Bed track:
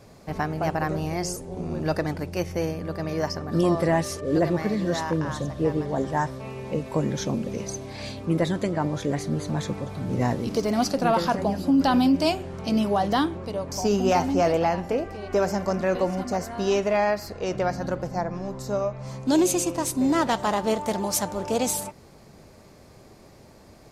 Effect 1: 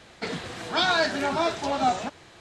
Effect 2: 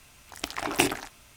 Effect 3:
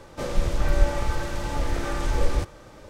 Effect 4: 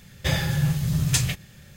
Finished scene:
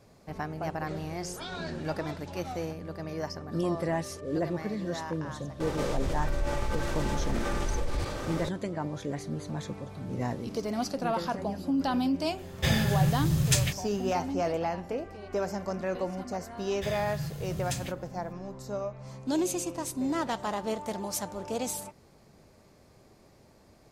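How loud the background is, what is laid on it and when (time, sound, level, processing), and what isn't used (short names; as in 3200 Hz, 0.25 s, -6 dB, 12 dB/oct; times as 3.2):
bed track -8 dB
0.64 add 1 -17.5 dB
5.6 add 3 -13.5 dB + fast leveller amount 70%
12.38 add 4 -2.5 dB
16.57 add 4 -13 dB
not used: 2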